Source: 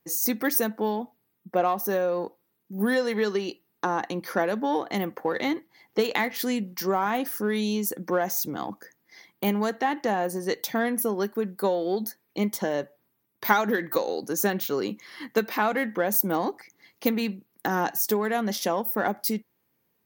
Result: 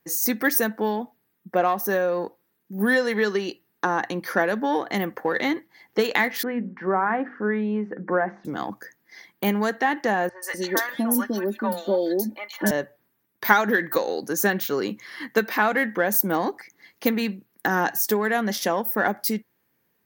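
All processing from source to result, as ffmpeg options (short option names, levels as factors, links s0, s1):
-filter_complex "[0:a]asettb=1/sr,asplit=3[s0][s1][s2];[s0]atrim=end=6.434[s3];[s1]atrim=start=6.43:end=8.45,asetpts=PTS-STARTPTS,afade=t=in:d=0.004:c=qsin,afade=t=out:st=2.016:d=0.004:c=qsin,lowpass=f=1900:w=0.5412,lowpass=f=1900:w=1.3066,bandreject=f=50:t=h:w=6,bandreject=f=100:t=h:w=6,bandreject=f=150:t=h:w=6,bandreject=f=200:t=h:w=6,bandreject=f=250:t=h:w=6,bandreject=f=300:t=h:w=6,bandreject=f=350:t=h:w=6,bandreject=f=400:t=h:w=6,bandreject=f=450:t=h:w=6[s4];[s2]atrim=start=8.446[s5];[s3][s4]acrossfade=d=0.004:c1=hsin:c2=qsin[s6];[s6][s5]acrossfade=d=0.004:c1=qsin:c2=hsin,asettb=1/sr,asplit=3[s7][s8][s9];[s7]atrim=end=10.294[s10];[s8]atrim=start=10.29:end=12.71,asetpts=PTS-STARTPTS,afade=t=in:d=0.004:c=qsin,afade=t=out:st=2.416:d=0.004:c=qsin,aecho=1:1:3.4:0.78,atrim=end_sample=106722,acrossover=split=690|2700[s11][s12][s13];[s13]adelay=130[s14];[s11]adelay=250[s15];[s15][s12][s14]amix=inputs=3:normalize=0,atrim=end_sample=106722[s16];[s9]atrim=start=12.706[s17];[s10][s16]acrossfade=d=0.004:c1=hsin:c2=qsin[s18];[s18][s17]acrossfade=d=0.004:c1=qsin:c2=hsin,equalizer=f=1700:t=o:w=0.49:g=6.5,bandreject=f=60:t=h:w=6,bandreject=f=120:t=h:w=6,volume=1.26"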